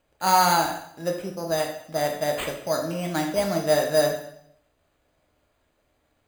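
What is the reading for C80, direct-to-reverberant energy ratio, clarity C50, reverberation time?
9.5 dB, 1.5 dB, 6.5 dB, 0.70 s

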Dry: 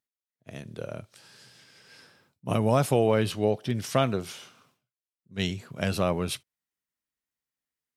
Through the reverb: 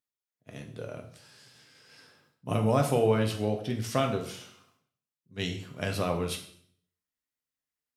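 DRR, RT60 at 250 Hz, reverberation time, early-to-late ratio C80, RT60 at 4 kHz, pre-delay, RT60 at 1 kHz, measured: 3.0 dB, 0.75 s, 0.60 s, 12.5 dB, 0.55 s, 4 ms, 0.55 s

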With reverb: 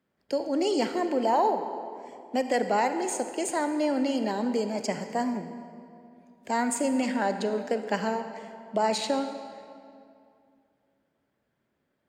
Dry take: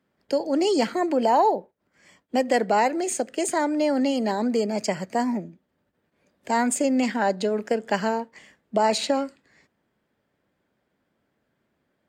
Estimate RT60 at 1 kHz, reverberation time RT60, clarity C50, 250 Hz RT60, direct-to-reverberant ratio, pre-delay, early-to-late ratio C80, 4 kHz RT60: 2.4 s, 2.4 s, 8.5 dB, 2.6 s, 8.0 dB, 39 ms, 9.0 dB, 1.6 s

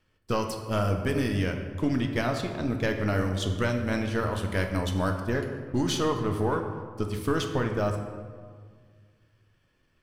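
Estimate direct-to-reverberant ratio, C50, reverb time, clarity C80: 3.5 dB, 6.0 dB, 1.8 s, 7.5 dB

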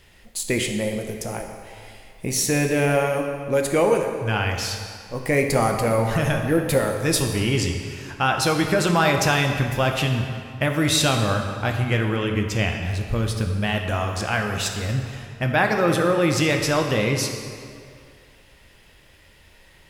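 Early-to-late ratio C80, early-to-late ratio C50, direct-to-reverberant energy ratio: 6.0 dB, 5.0 dB, 3.0 dB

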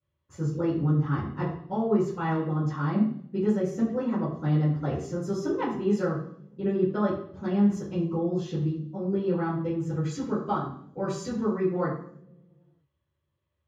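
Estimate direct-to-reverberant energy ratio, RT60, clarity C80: -13.0 dB, not exponential, 8.0 dB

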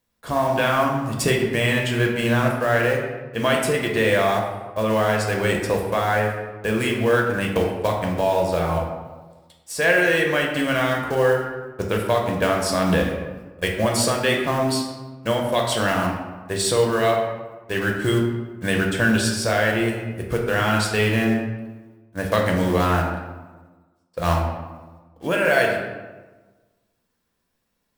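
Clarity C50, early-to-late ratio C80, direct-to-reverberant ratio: 3.5 dB, 5.5 dB, -0.5 dB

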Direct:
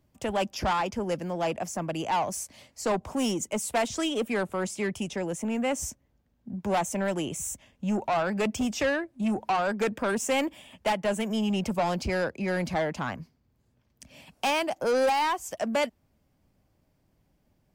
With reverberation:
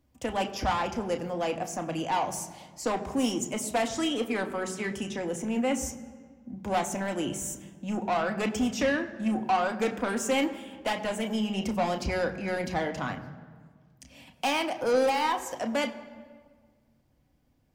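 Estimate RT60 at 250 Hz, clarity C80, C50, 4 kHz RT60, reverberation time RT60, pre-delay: 2.0 s, 13.5 dB, 12.5 dB, 1.2 s, 1.6 s, 3 ms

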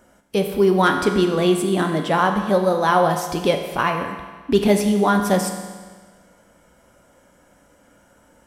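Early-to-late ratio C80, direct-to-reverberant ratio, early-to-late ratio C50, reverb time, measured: 8.0 dB, 4.0 dB, 6.5 dB, 1.5 s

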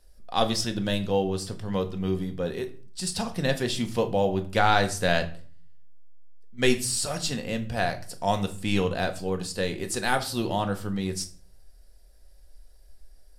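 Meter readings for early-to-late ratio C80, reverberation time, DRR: 19.0 dB, 0.45 s, 6.0 dB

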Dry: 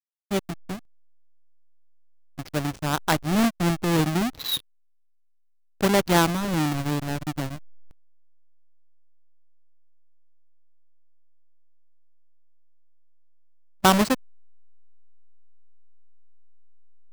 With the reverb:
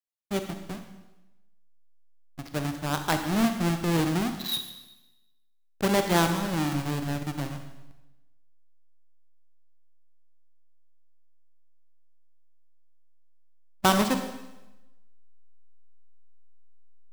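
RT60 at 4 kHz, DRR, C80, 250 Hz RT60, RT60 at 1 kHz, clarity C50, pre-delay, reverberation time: 0.95 s, 6.5 dB, 9.5 dB, 1.0 s, 1.0 s, 7.5 dB, 33 ms, 1.0 s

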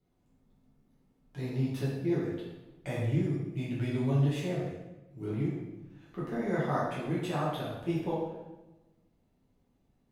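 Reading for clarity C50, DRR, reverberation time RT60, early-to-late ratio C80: 0.5 dB, -8.0 dB, 1.1 s, 3.5 dB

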